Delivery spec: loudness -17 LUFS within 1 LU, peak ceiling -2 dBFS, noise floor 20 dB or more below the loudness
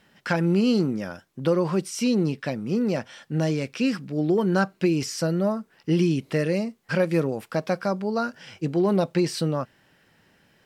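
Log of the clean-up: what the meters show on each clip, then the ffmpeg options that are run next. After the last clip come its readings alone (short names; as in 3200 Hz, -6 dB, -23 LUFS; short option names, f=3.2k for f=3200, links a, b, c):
loudness -25.0 LUFS; peak -9.0 dBFS; loudness target -17.0 LUFS
-> -af "volume=8dB,alimiter=limit=-2dB:level=0:latency=1"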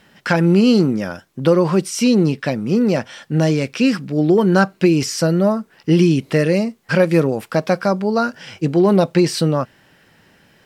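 loudness -17.0 LUFS; peak -2.0 dBFS; noise floor -54 dBFS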